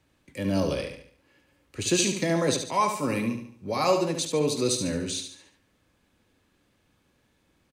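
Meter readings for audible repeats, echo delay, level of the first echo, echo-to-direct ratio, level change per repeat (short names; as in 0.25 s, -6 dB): 4, 72 ms, -7.0 dB, -6.0 dB, -7.5 dB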